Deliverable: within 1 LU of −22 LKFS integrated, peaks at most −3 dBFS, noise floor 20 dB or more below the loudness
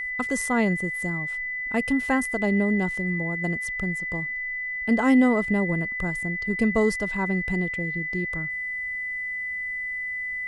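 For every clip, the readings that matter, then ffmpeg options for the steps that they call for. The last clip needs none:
interfering tone 2,000 Hz; level of the tone −28 dBFS; integrated loudness −25.0 LKFS; sample peak −9.0 dBFS; target loudness −22.0 LKFS
→ -af "bandreject=frequency=2000:width=30"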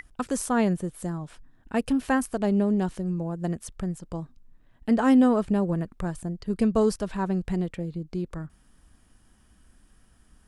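interfering tone none found; integrated loudness −26.5 LKFS; sample peak −9.5 dBFS; target loudness −22.0 LKFS
→ -af "volume=4.5dB"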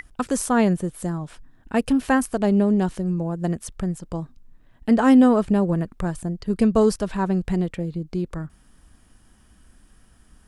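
integrated loudness −22.0 LKFS; sample peak −5.0 dBFS; background noise floor −56 dBFS

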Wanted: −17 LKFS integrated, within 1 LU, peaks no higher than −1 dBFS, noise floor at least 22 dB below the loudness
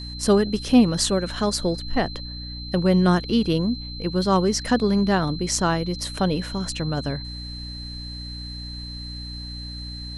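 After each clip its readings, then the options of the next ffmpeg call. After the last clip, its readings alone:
mains hum 60 Hz; hum harmonics up to 300 Hz; level of the hum −34 dBFS; interfering tone 4,100 Hz; level of the tone −36 dBFS; integrated loudness −22.5 LKFS; sample peak −4.5 dBFS; target loudness −17.0 LKFS
→ -af "bandreject=frequency=60:width_type=h:width=6,bandreject=frequency=120:width_type=h:width=6,bandreject=frequency=180:width_type=h:width=6,bandreject=frequency=240:width_type=h:width=6,bandreject=frequency=300:width_type=h:width=6"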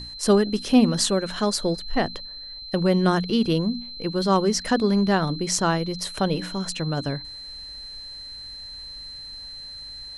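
mains hum none found; interfering tone 4,100 Hz; level of the tone −36 dBFS
→ -af "bandreject=frequency=4100:width=30"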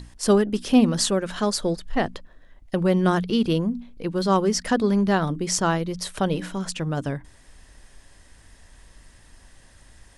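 interfering tone none found; integrated loudness −23.0 LKFS; sample peak −5.0 dBFS; target loudness −17.0 LKFS
→ -af "volume=6dB,alimiter=limit=-1dB:level=0:latency=1"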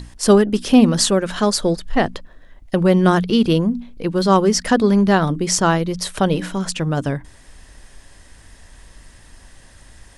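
integrated loudness −17.5 LKFS; sample peak −1.0 dBFS; background noise floor −46 dBFS

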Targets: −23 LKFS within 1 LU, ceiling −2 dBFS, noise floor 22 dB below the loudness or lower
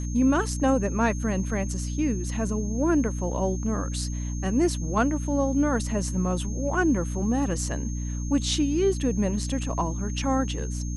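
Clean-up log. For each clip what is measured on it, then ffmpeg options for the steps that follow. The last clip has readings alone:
mains hum 60 Hz; hum harmonics up to 300 Hz; level of the hum −27 dBFS; interfering tone 6,400 Hz; level of the tone −41 dBFS; integrated loudness −26.0 LKFS; sample peak −10.0 dBFS; target loudness −23.0 LKFS
→ -af "bandreject=frequency=60:width_type=h:width=6,bandreject=frequency=120:width_type=h:width=6,bandreject=frequency=180:width_type=h:width=6,bandreject=frequency=240:width_type=h:width=6,bandreject=frequency=300:width_type=h:width=6"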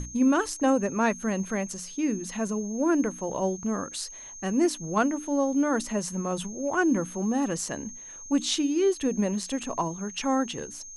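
mains hum none found; interfering tone 6,400 Hz; level of the tone −41 dBFS
→ -af "bandreject=frequency=6400:width=30"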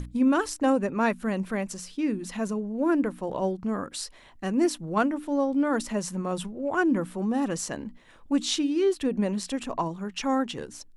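interfering tone none found; integrated loudness −27.5 LKFS; sample peak −12.0 dBFS; target loudness −23.0 LKFS
→ -af "volume=4.5dB"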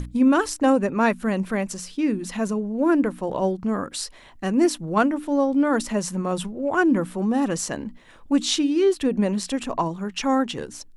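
integrated loudness −23.0 LKFS; sample peak −7.5 dBFS; background noise floor −48 dBFS

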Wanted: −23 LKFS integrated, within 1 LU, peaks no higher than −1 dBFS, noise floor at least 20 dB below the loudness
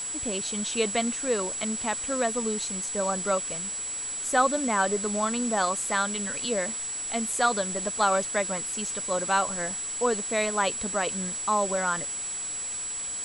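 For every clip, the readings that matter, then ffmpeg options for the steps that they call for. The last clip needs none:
interfering tone 7,800 Hz; level of the tone −31 dBFS; background noise floor −34 dBFS; target noise floor −47 dBFS; integrated loudness −27.0 LKFS; sample peak −9.0 dBFS; target loudness −23.0 LKFS
→ -af "bandreject=frequency=7800:width=30"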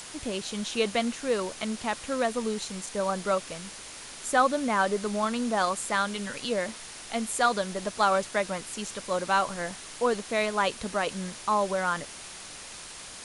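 interfering tone none found; background noise floor −43 dBFS; target noise floor −49 dBFS
→ -af "afftdn=noise_reduction=6:noise_floor=-43"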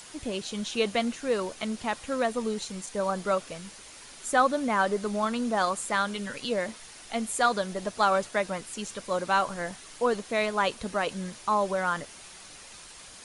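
background noise floor −48 dBFS; target noise floor −49 dBFS
→ -af "afftdn=noise_reduction=6:noise_floor=-48"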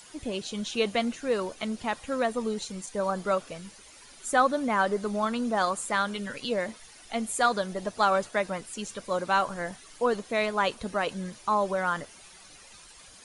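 background noise floor −51 dBFS; integrated loudness −29.0 LKFS; sample peak −9.5 dBFS; target loudness −23.0 LKFS
→ -af "volume=6dB"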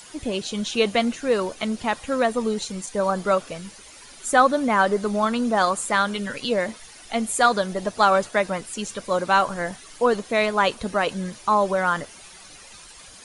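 integrated loudness −23.0 LKFS; sample peak −3.5 dBFS; background noise floor −45 dBFS

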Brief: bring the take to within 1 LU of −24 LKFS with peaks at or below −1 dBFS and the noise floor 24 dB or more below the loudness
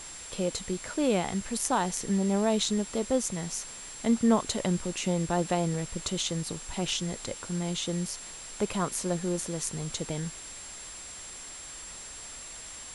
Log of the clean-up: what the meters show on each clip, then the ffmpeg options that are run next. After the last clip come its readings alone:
interfering tone 7,500 Hz; level of the tone −43 dBFS; background noise floor −43 dBFS; target noise floor −55 dBFS; integrated loudness −31.0 LKFS; sample peak −9.5 dBFS; target loudness −24.0 LKFS
→ -af "bandreject=frequency=7500:width=30"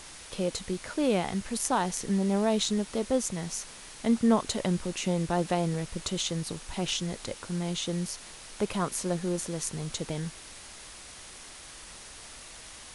interfering tone none found; background noise floor −47 dBFS; target noise floor −54 dBFS
→ -af "afftdn=noise_reduction=7:noise_floor=-47"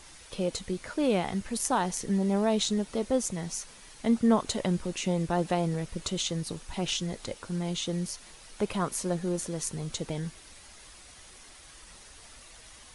background noise floor −51 dBFS; target noise floor −54 dBFS
→ -af "afftdn=noise_reduction=6:noise_floor=-51"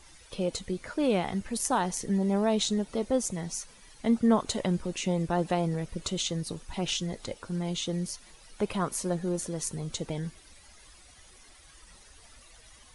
background noise floor −55 dBFS; integrated loudness −30.5 LKFS; sample peak −10.5 dBFS; target loudness −24.0 LKFS
→ -af "volume=6.5dB"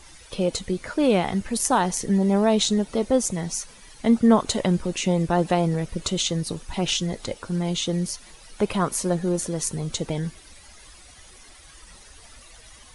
integrated loudness −24.0 LKFS; sample peak −4.0 dBFS; background noise floor −49 dBFS

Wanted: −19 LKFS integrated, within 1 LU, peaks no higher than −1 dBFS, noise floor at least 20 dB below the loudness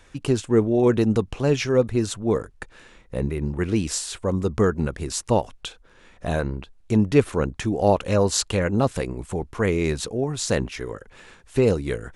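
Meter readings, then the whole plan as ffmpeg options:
integrated loudness −23.0 LKFS; sample peak −4.0 dBFS; target loudness −19.0 LKFS
→ -af "volume=4dB,alimiter=limit=-1dB:level=0:latency=1"

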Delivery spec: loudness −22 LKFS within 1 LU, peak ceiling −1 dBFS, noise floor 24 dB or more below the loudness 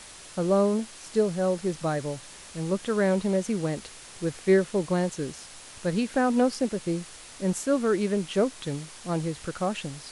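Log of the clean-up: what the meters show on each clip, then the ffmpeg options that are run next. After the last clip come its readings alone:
background noise floor −46 dBFS; target noise floor −52 dBFS; integrated loudness −27.5 LKFS; sample peak −11.0 dBFS; target loudness −22.0 LKFS
→ -af "afftdn=noise_reduction=6:noise_floor=-46"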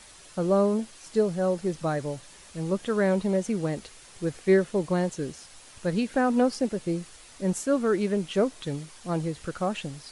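background noise floor −50 dBFS; target noise floor −52 dBFS
→ -af "afftdn=noise_reduction=6:noise_floor=-50"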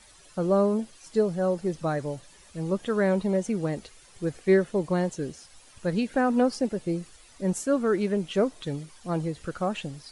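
background noise floor −54 dBFS; integrated loudness −27.5 LKFS; sample peak −11.0 dBFS; target loudness −22.0 LKFS
→ -af "volume=5.5dB"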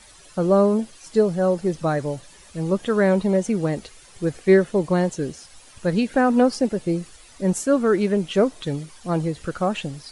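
integrated loudness −22.0 LKFS; sample peak −5.5 dBFS; background noise floor −49 dBFS

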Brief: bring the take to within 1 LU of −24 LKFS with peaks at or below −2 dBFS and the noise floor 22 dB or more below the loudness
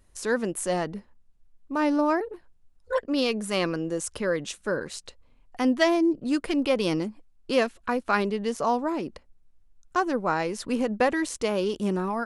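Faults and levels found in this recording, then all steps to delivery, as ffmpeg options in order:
integrated loudness −26.5 LKFS; sample peak −7.0 dBFS; target loudness −24.0 LKFS
→ -af "volume=2.5dB"

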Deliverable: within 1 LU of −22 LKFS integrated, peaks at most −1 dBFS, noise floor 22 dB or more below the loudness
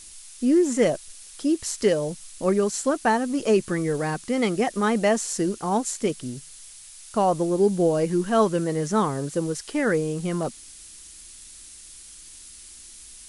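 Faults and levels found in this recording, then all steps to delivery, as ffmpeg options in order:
background noise floor −45 dBFS; target noise floor −46 dBFS; integrated loudness −24.0 LKFS; sample peak −9.0 dBFS; target loudness −22.0 LKFS
→ -af "afftdn=noise_reduction=6:noise_floor=-45"
-af "volume=2dB"

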